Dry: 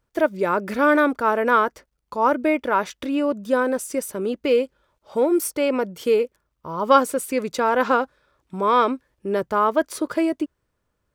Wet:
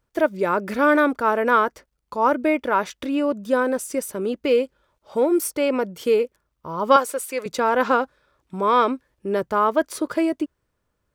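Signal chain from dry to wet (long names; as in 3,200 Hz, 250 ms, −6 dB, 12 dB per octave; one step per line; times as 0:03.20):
0:06.96–0:07.46: high-pass filter 490 Hz 12 dB per octave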